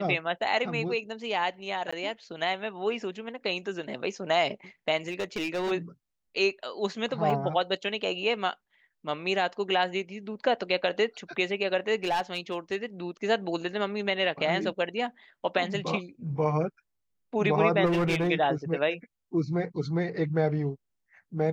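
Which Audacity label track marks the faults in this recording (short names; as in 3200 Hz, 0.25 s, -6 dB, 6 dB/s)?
1.910000	1.930000	gap 15 ms
5.080000	5.720000	clipped -26.5 dBFS
7.300000	7.300000	gap 3.7 ms
12.040000	12.750000	clipped -22.5 dBFS
17.850000	18.290000	clipped -22 dBFS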